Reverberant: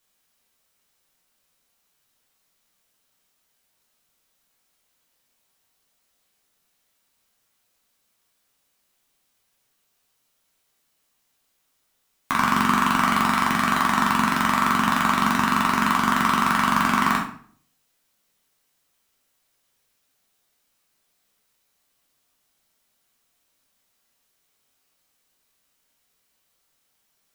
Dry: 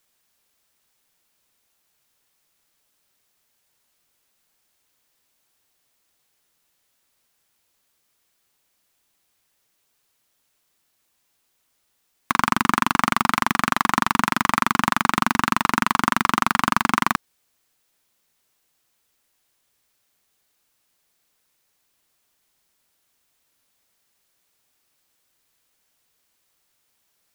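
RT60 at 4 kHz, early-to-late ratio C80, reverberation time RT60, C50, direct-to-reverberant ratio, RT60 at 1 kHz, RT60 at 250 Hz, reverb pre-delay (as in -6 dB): 0.40 s, 11.0 dB, 0.55 s, 5.5 dB, -2.5 dB, 0.50 s, 0.60 s, 7 ms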